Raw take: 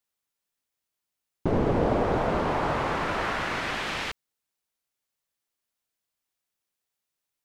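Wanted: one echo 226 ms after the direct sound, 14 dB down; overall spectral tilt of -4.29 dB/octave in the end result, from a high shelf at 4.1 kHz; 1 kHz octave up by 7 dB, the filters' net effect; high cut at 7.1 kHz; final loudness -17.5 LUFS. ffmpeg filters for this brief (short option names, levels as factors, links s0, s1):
-af "lowpass=7100,equalizer=f=1000:t=o:g=9,highshelf=f=4100:g=-5,aecho=1:1:226:0.2,volume=2"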